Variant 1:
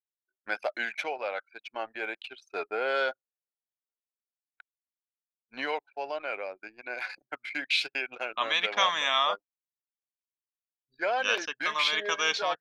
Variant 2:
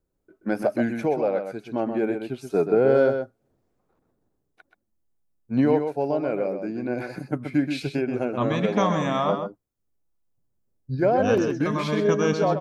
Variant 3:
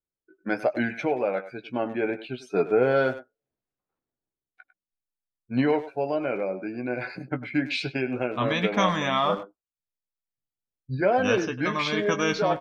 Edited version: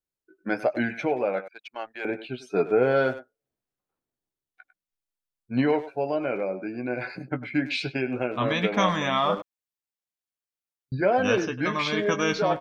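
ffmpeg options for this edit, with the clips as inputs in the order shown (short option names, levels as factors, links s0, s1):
-filter_complex "[0:a]asplit=2[s0][s1];[2:a]asplit=3[s2][s3][s4];[s2]atrim=end=1.482[s5];[s0]atrim=start=1.478:end=2.052[s6];[s3]atrim=start=2.048:end=9.422[s7];[s1]atrim=start=9.418:end=10.922[s8];[s4]atrim=start=10.918[s9];[s5][s6]acrossfade=d=0.004:c1=hsin:c2=hsin[s10];[s10][s7]acrossfade=d=0.004:c1=hsin:c2=hsin[s11];[s11][s8]acrossfade=d=0.004:c1=hsin:c2=hsin[s12];[s12][s9]acrossfade=d=0.004:c1=hsin:c2=hsin"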